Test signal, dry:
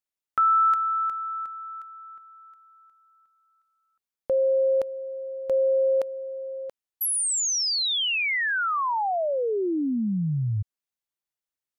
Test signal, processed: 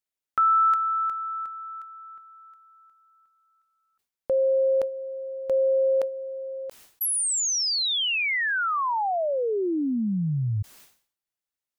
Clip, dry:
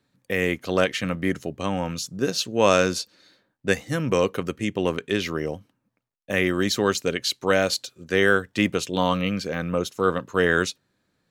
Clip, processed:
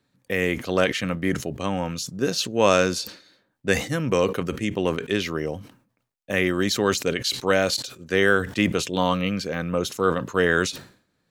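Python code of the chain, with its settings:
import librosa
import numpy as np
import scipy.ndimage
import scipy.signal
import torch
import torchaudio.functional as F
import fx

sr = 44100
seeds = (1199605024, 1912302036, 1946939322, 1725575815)

y = fx.sustainer(x, sr, db_per_s=120.0)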